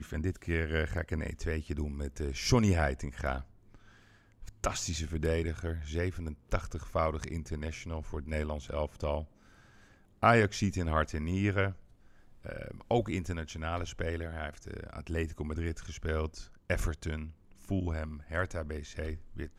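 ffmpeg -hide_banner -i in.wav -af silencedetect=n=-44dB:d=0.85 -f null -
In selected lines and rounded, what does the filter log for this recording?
silence_start: 9.25
silence_end: 10.23 | silence_duration: 0.98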